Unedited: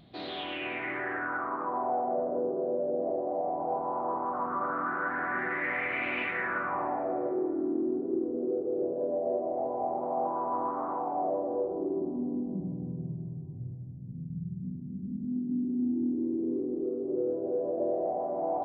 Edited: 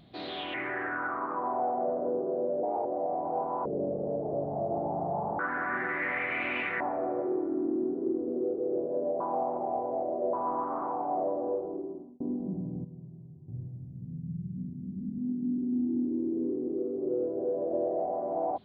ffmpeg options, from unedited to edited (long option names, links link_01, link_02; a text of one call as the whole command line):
ffmpeg -i in.wav -filter_complex "[0:a]asplit=12[link_01][link_02][link_03][link_04][link_05][link_06][link_07][link_08][link_09][link_10][link_11][link_12];[link_01]atrim=end=0.542[link_13];[link_02]atrim=start=0.838:end=2.934[link_14];[link_03]atrim=start=2.93:end=3.2,asetpts=PTS-STARTPTS,asetrate=53802,aresample=44100[link_15];[link_04]atrim=start=3.196:end=4.004[link_16];[link_05]atrim=start=4:end=5.01,asetpts=PTS-STARTPTS,asetrate=25578,aresample=44100[link_17];[link_06]atrim=start=5.006:end=6.422[link_18];[link_07]atrim=start=6.868:end=9.272[link_19];[link_08]atrim=start=9.268:end=10.402,asetpts=PTS-STARTPTS,areverse[link_20];[link_09]atrim=start=10.398:end=12.27,asetpts=PTS-STARTPTS,afade=type=out:start_time=1.152:duration=0.72[link_21];[link_10]atrim=start=12.27:end=12.912,asetpts=PTS-STARTPTS,afade=type=in:duration=0.004:curve=hsin[link_22];[link_11]atrim=start=12.908:end=13.552,asetpts=PTS-STARTPTS,volume=-9.5dB[link_23];[link_12]atrim=start=13.548[link_24];[link_13][link_14]acrossfade=duration=0.004:curve1=hsin:curve2=hsin[link_25];[link_25][link_15]acrossfade=duration=0.004:curve1=hsin:curve2=hsin[link_26];[link_26][link_16]acrossfade=duration=0.004:curve1=hsin:curve2=hsin[link_27];[link_27][link_17]acrossfade=duration=0.004:curve1=hsin:curve2=hsin[link_28];[link_28][link_18]acrossfade=duration=0.004:curve1=hsin:curve2=hsin[link_29];[link_29][link_19]acrossfade=duration=0.004:curve1=hsin:curve2=hsin[link_30];[link_30][link_20]acrossfade=duration=0.004:curve1=hsin:curve2=hsin[link_31];[link_21][link_22]concat=n=2:v=0:a=1[link_32];[link_31][link_32]acrossfade=duration=0.004:curve1=hsin:curve2=hsin[link_33];[link_33][link_23]acrossfade=duration=0.004:curve1=hsin:curve2=hsin[link_34];[link_34][link_24]acrossfade=duration=0.004:curve1=hsin:curve2=hsin" out.wav